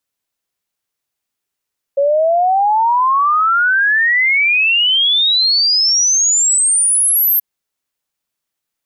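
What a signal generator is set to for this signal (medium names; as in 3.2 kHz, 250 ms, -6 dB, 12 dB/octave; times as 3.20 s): log sweep 550 Hz -> 13 kHz 5.43 s -10 dBFS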